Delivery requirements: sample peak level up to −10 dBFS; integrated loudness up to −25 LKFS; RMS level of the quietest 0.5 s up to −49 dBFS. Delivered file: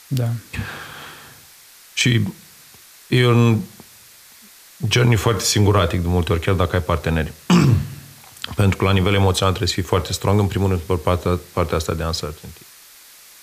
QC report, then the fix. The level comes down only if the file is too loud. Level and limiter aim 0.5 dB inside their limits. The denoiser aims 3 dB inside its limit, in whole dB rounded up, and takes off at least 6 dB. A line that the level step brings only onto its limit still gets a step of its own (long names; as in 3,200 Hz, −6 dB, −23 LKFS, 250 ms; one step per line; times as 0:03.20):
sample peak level −4.5 dBFS: out of spec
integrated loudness −19.0 LKFS: out of spec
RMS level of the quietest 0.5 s −46 dBFS: out of spec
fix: level −6.5 dB